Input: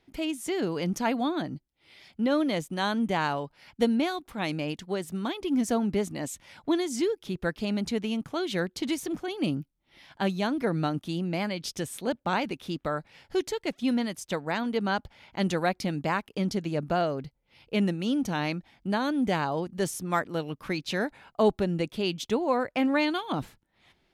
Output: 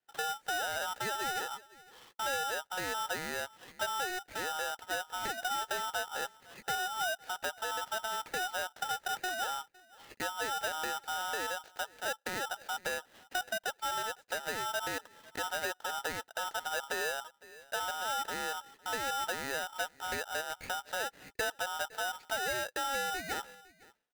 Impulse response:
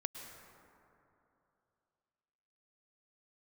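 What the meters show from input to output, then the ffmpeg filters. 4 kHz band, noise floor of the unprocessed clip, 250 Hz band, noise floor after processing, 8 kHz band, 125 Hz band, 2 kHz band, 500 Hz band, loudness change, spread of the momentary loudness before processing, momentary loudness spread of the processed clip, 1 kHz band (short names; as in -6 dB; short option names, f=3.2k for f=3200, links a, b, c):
-1.0 dB, -73 dBFS, -24.0 dB, -67 dBFS, +2.0 dB, -22.0 dB, +0.5 dB, -10.5 dB, -6.5 dB, 8 LU, 6 LU, -2.5 dB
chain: -filter_complex "[0:a]acrossover=split=450|1100[a][b][c];[c]acompressor=threshold=-50dB:ratio=6[d];[a][b][d]amix=inputs=3:normalize=0,asoftclip=type=tanh:threshold=-17.5dB,agate=range=-22dB:threshold=-54dB:ratio=16:detection=peak,asplit=2[e][f];[f]alimiter=level_in=5.5dB:limit=-24dB:level=0:latency=1:release=96,volume=-5.5dB,volume=1dB[g];[e][g]amix=inputs=2:normalize=0,highpass=290,lowpass=2.3k,equalizer=f=620:t=o:w=0.3:g=6,acrusher=bits=3:mode=log:mix=0:aa=0.000001,asplit=2[h][i];[i]adelay=507.3,volume=-27dB,highshelf=f=4k:g=-11.4[j];[h][j]amix=inputs=2:normalize=0,acrossover=split=460|1200[k][l][m];[k]acompressor=threshold=-31dB:ratio=4[n];[l]acompressor=threshold=-39dB:ratio=4[o];[m]acompressor=threshold=-49dB:ratio=4[p];[n][o][p]amix=inputs=3:normalize=0,aeval=exprs='val(0)*sgn(sin(2*PI*1100*n/s))':c=same,volume=-3.5dB"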